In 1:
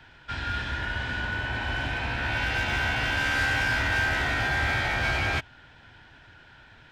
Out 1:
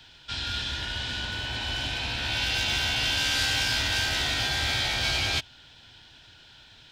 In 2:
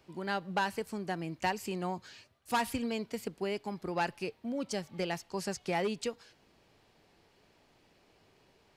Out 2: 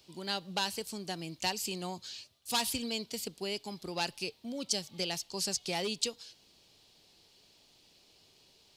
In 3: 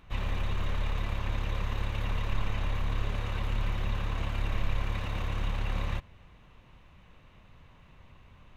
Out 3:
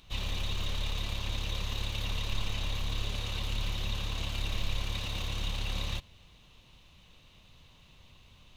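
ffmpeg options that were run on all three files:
ffmpeg -i in.wav -af "highshelf=frequency=2600:width_type=q:width=1.5:gain=12,volume=-3.5dB" out.wav

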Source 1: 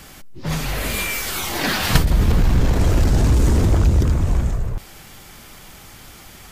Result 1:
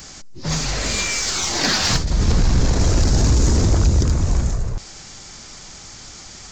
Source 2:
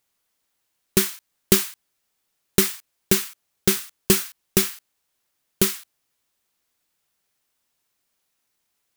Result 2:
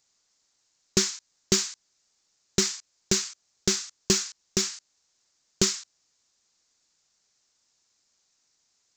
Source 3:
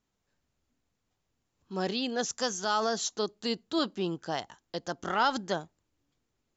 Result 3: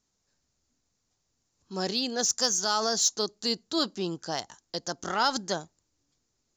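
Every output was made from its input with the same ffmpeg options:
ffmpeg -i in.wav -af "aresample=16000,aresample=44100,aexciter=amount=2.2:drive=8.8:freq=4300,alimiter=limit=-7.5dB:level=0:latency=1:release=360" out.wav

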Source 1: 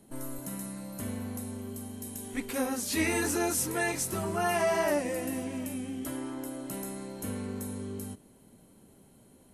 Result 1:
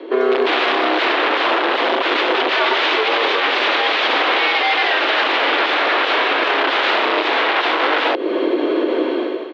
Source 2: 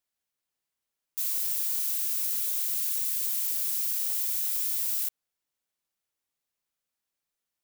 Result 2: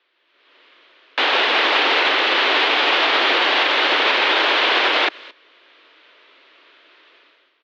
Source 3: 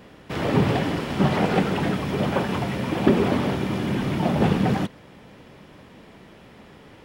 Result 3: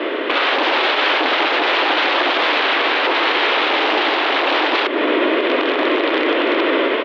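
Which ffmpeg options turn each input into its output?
ffmpeg -i in.wav -filter_complex "[0:a]dynaudnorm=framelen=130:gausssize=7:maxgain=16dB,volume=16dB,asoftclip=hard,volume=-16dB,equalizer=frequency=670:width_type=o:width=0.34:gain=-11,asplit=2[link_01][link_02];[link_02]adelay=221.6,volume=-28dB,highshelf=frequency=4000:gain=-4.99[link_03];[link_01][link_03]amix=inputs=2:normalize=0,aeval=exprs='(mod(15*val(0)+1,2)-1)/15':channel_layout=same,highpass=frequency=180:width_type=q:width=0.5412,highpass=frequency=180:width_type=q:width=1.307,lowpass=frequency=3500:width_type=q:width=0.5176,lowpass=frequency=3500:width_type=q:width=0.7071,lowpass=frequency=3500:width_type=q:width=1.932,afreqshift=120,acompressor=threshold=-39dB:ratio=6,alimiter=level_in=34dB:limit=-1dB:release=50:level=0:latency=1,volume=-6.5dB" out.wav

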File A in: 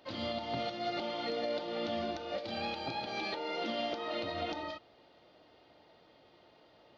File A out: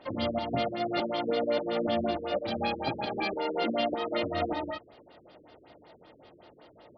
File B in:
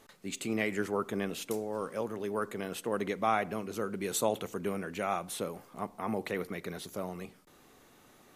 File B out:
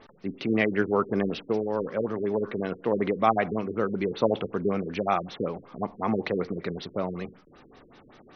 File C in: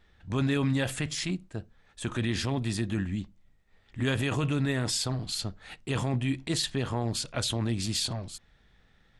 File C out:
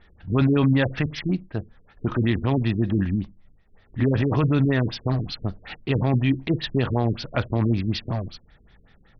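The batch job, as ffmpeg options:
ffmpeg -i in.wav -filter_complex "[0:a]acrossover=split=3500[link_01][link_02];[link_02]acompressor=threshold=-44dB:ratio=4:attack=1:release=60[link_03];[link_01][link_03]amix=inputs=2:normalize=0,afftfilt=real='re*lt(b*sr/1024,460*pow(6300/460,0.5+0.5*sin(2*PI*5.3*pts/sr)))':imag='im*lt(b*sr/1024,460*pow(6300/460,0.5+0.5*sin(2*PI*5.3*pts/sr)))':win_size=1024:overlap=0.75,volume=8dB" out.wav

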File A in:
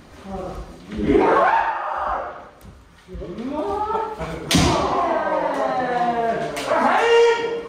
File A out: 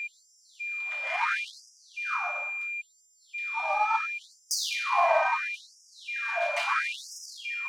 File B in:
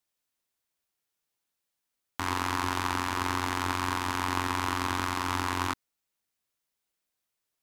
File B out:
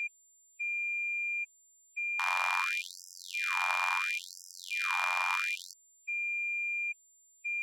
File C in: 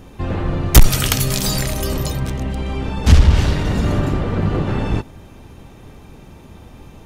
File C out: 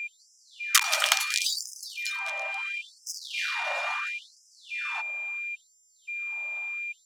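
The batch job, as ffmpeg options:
ffmpeg -i in.wav -af "aeval=exprs='val(0)+0.0398*sin(2*PI*2400*n/s)':channel_layout=same,adynamicsmooth=sensitivity=2:basefreq=3700,afftfilt=real='re*gte(b*sr/1024,540*pow(5000/540,0.5+0.5*sin(2*PI*0.73*pts/sr)))':imag='im*gte(b*sr/1024,540*pow(5000/540,0.5+0.5*sin(2*PI*0.73*pts/sr)))':win_size=1024:overlap=0.75,volume=-1.5dB" out.wav

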